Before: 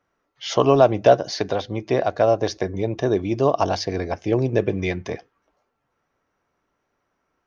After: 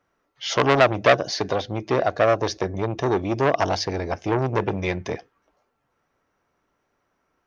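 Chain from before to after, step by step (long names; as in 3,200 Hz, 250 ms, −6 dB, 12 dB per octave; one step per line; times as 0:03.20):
saturating transformer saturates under 1,600 Hz
level +1.5 dB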